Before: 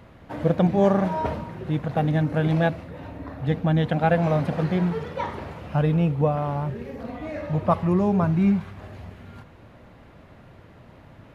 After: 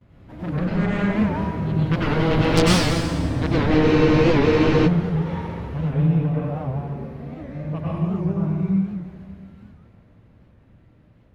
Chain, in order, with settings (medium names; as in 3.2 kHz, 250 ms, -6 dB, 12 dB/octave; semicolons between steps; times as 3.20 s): Doppler pass-by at 2.92 s, 10 m/s, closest 8.7 m; treble shelf 2.5 kHz -11 dB; Chebyshev shaper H 3 -10 dB, 6 -12 dB, 7 -13 dB, 8 -15 dB, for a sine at -12 dBFS; plate-style reverb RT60 1.9 s, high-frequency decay 0.85×, pre-delay 85 ms, DRR -8 dB; gate with hold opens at -51 dBFS; peaking EQ 810 Hz -11 dB 2.7 oct; spectral freeze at 3.85 s, 1.01 s; warped record 78 rpm, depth 160 cents; trim +5.5 dB